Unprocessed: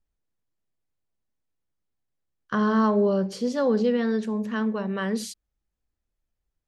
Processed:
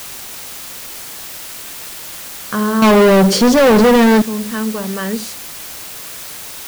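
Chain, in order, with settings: 2.82–4.22 s: waveshaping leveller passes 5; word length cut 6-bit, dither triangular; trim +5.5 dB

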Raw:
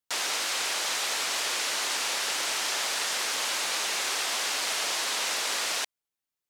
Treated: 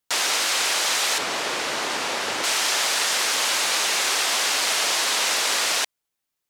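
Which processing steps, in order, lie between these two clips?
1.18–2.44 s: tilt EQ -3 dB/octave; trim +7 dB

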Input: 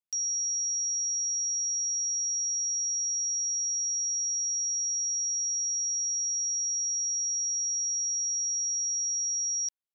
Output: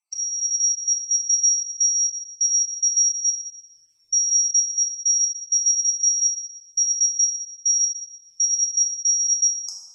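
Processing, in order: random holes in the spectrogram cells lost 66%; Bessel low-pass 5.4 kHz, order 2; tone controls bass +15 dB, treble +14 dB; peak limiter -29.5 dBFS, peak gain reduction 10 dB; level rider gain up to 7.5 dB; FDN reverb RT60 1.4 s, low-frequency decay 1×, high-frequency decay 0.65×, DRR -1 dB; trim +7 dB

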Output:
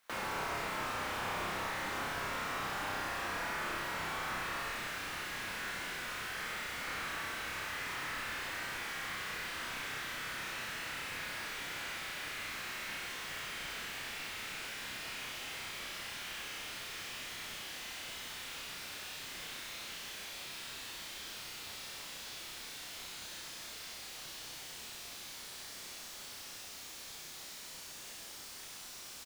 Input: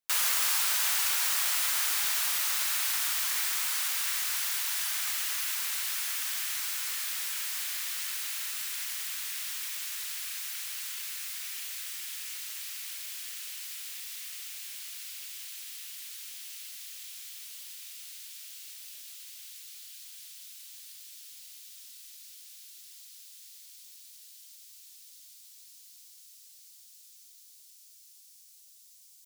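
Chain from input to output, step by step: integer overflow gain 23.5 dB; 4.58–6.81 s: peaking EQ 620 Hz -9 dB 1.8 oct; compression 3:1, threshold -59 dBFS, peak gain reduction 22.5 dB; peaking EQ 1.3 kHz +13 dB 2.6 oct; doubling 43 ms -9 dB; flutter echo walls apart 5.4 m, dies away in 1.4 s; slew-rate limiter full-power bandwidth 9.3 Hz; trim +10.5 dB

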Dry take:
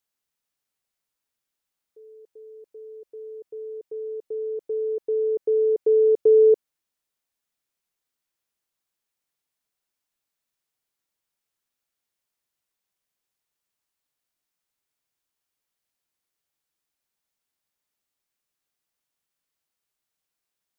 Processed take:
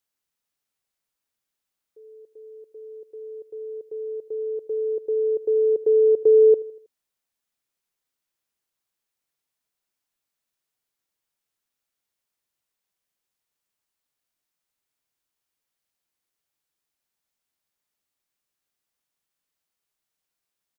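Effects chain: feedback delay 80 ms, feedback 51%, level -20.5 dB

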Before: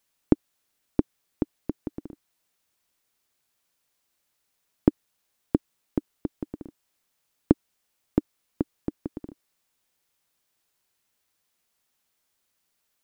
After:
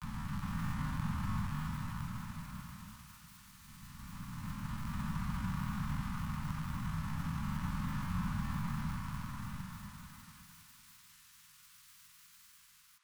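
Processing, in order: spectral blur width 1420 ms; FDN reverb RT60 1.3 s, low-frequency decay 1.5×, high-frequency decay 0.95×, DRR 5.5 dB; granulator 100 ms, pitch spread up and down by 0 st; harmony voices +12 st -1 dB; elliptic band-stop 190–1100 Hz, stop band 40 dB; repeats whose band climbs or falls 279 ms, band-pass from 710 Hz, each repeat 0.7 oct, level -3.5 dB; trim +18 dB

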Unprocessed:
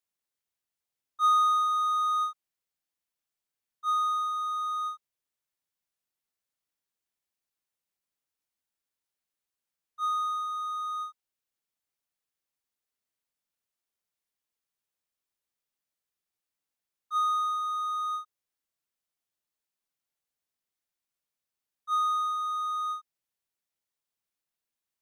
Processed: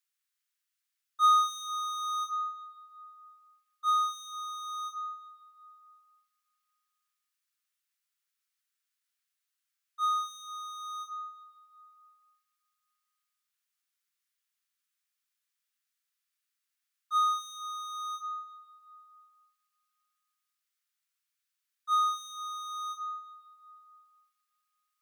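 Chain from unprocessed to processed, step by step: steep high-pass 1.2 kHz; reverberation RT60 2.4 s, pre-delay 5 ms, DRR 6 dB; trim +3.5 dB

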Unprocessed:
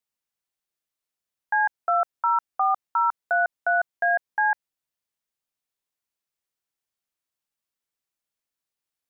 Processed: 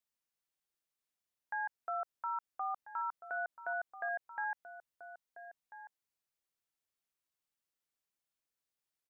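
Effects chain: peak limiter -26.5 dBFS, peak gain reduction 12 dB; echo from a far wall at 230 m, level -11 dB; trim -4 dB

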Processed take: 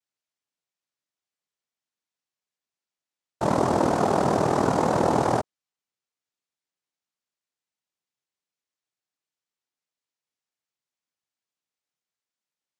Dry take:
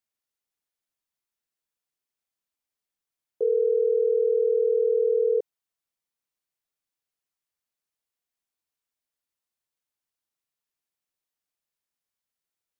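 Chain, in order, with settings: noise-vocoded speech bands 2

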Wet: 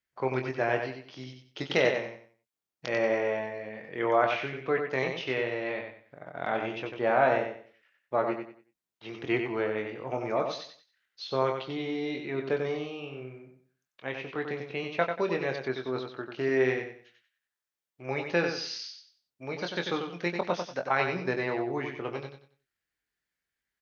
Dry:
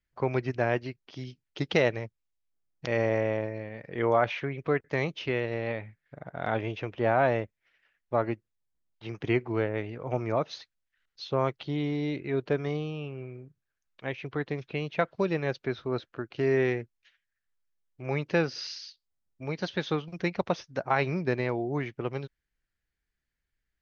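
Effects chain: high-pass 360 Hz 6 dB/octave; doubling 23 ms -7 dB; on a send: feedback delay 93 ms, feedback 29%, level -6 dB

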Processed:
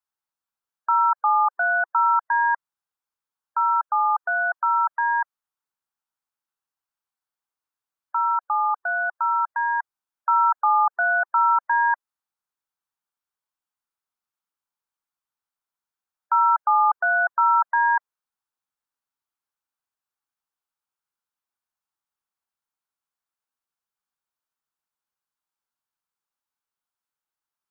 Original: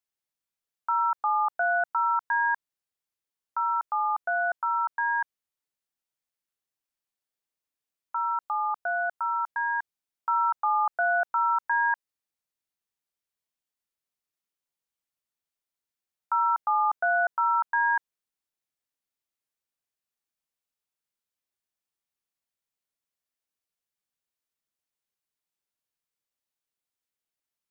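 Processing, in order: spectral gate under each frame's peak -30 dB strong; high-order bell 1.1 kHz +9.5 dB 1.2 oct; trim -3.5 dB

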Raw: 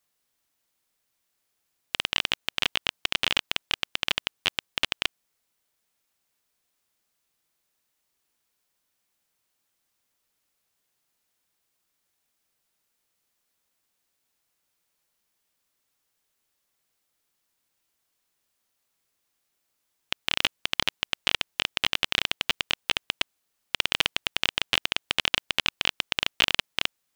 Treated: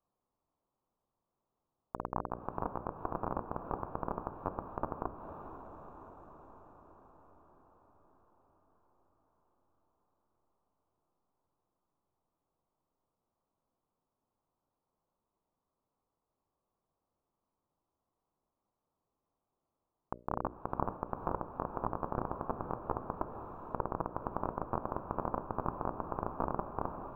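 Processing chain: echo that smears into a reverb 476 ms, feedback 65%, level -8.5 dB; low-pass that closes with the level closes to 2.2 kHz, closed at -27.5 dBFS; elliptic band-stop 1.1–8 kHz, stop band 40 dB; distance through air 290 m; hum notches 60/120/180/240/300/360/420/480/540/600 Hz; decimation joined by straight lines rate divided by 3×; trim +3 dB

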